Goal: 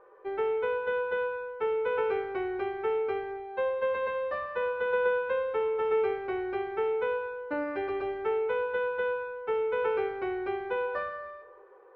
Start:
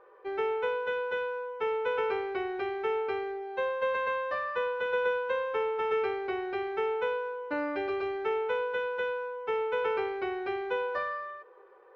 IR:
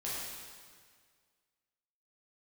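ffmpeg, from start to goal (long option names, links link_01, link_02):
-filter_complex "[0:a]lowpass=frequency=1700:poles=1,asplit=2[link_01][link_02];[1:a]atrim=start_sample=2205,afade=type=out:start_time=0.35:duration=0.01,atrim=end_sample=15876,lowshelf=frequency=160:gain=9.5[link_03];[link_02][link_03]afir=irnorm=-1:irlink=0,volume=-11.5dB[link_04];[link_01][link_04]amix=inputs=2:normalize=0"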